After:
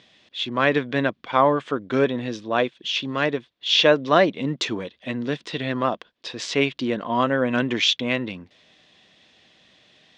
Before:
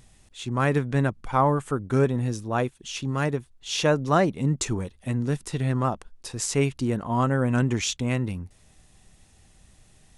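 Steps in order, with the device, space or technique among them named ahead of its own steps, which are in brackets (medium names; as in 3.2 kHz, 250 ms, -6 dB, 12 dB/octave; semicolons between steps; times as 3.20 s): phone earpiece (cabinet simulation 350–4400 Hz, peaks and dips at 400 Hz -5 dB, 830 Hz -9 dB, 1.3 kHz -6 dB, 3.4 kHz +6 dB); trim +8.5 dB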